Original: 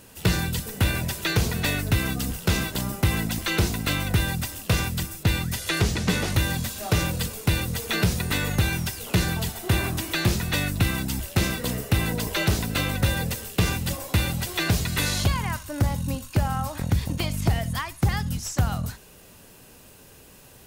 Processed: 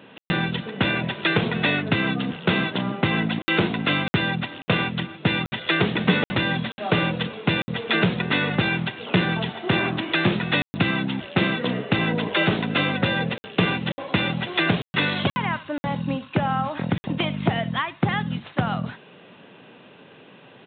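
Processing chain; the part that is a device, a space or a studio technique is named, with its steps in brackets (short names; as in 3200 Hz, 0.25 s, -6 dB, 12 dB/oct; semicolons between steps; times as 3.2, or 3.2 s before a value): call with lost packets (HPF 150 Hz 24 dB/oct; downsampling 8000 Hz; packet loss packets of 60 ms random); gain +5.5 dB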